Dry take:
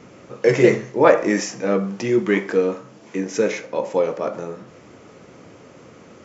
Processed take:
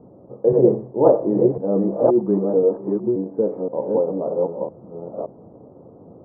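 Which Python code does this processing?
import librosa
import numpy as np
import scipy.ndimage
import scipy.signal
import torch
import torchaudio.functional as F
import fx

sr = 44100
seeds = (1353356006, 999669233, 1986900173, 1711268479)

y = fx.reverse_delay(x, sr, ms=526, wet_db=-2)
y = scipy.signal.sosfilt(scipy.signal.butter(6, 870.0, 'lowpass', fs=sr, output='sos'), y)
y = F.gain(torch.from_numpy(y), -1.0).numpy()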